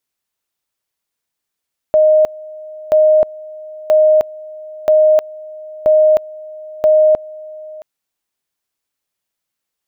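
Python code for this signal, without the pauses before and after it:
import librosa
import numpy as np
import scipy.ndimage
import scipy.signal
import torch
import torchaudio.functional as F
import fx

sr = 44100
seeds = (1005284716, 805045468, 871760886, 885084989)

y = fx.two_level_tone(sr, hz=619.0, level_db=-6.5, drop_db=22.0, high_s=0.31, low_s=0.67, rounds=6)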